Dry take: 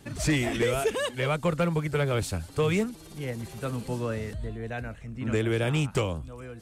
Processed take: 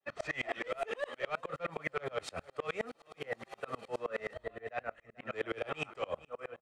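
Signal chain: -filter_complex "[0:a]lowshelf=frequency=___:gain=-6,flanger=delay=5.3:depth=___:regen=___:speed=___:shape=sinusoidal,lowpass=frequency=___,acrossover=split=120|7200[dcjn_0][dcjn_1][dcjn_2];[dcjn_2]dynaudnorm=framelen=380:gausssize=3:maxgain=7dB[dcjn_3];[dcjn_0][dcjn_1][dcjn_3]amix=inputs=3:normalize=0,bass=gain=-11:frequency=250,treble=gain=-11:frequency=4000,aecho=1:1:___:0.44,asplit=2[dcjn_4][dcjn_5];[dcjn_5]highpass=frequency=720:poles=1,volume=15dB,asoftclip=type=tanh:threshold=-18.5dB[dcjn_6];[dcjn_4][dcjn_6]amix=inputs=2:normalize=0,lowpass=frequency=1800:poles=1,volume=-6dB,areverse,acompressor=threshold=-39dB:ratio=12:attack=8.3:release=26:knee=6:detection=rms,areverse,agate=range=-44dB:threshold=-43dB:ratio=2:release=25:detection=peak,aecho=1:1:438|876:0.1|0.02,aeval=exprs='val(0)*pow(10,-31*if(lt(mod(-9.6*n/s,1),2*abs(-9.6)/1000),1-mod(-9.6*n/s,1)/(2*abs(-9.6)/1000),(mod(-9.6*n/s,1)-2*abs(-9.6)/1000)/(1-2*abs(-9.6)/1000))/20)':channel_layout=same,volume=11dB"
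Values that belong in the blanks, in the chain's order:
290, 8.9, -64, 0.58, 9300, 1.6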